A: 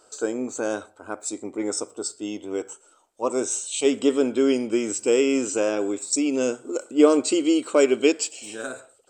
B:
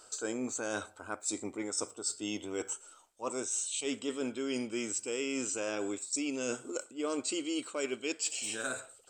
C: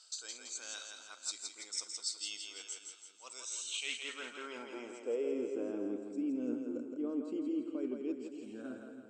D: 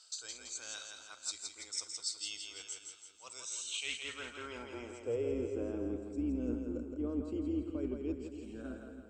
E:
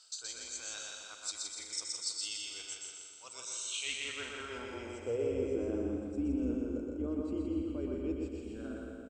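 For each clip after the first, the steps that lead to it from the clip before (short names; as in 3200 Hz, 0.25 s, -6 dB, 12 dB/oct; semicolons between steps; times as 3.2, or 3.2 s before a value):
bell 400 Hz -9 dB 2.7 oct; reverse; compressor 10:1, threshold -35 dBFS, peak gain reduction 17 dB; reverse; gain +3.5 dB
low shelf 150 Hz -6 dB; band-pass sweep 4300 Hz -> 240 Hz, 3.41–5.79; split-band echo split 330 Hz, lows 0.274 s, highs 0.166 s, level -5 dB; gain +4.5 dB
octaver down 2 oct, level -6 dB
feedback echo 0.123 s, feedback 51%, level -3 dB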